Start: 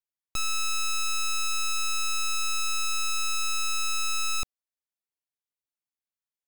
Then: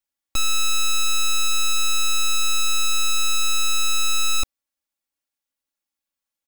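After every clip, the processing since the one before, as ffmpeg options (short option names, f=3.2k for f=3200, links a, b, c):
-af "aecho=1:1:3.6:0.85,volume=4.5dB"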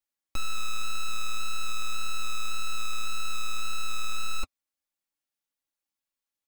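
-filter_complex "[0:a]flanger=delay=5.4:depth=8.2:regen=-33:speed=1.8:shape=triangular,asoftclip=type=tanh:threshold=-18.5dB,acrossover=split=2800[a][b];[b]acompressor=threshold=-37dB:ratio=4:attack=1:release=60[c];[a][c]amix=inputs=2:normalize=0"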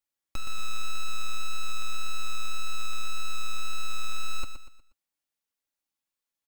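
-filter_complex "[0:a]asoftclip=type=tanh:threshold=-20.5dB,asplit=2[a][b];[b]aecho=0:1:120|240|360|480:0.355|0.138|0.054|0.021[c];[a][c]amix=inputs=2:normalize=0"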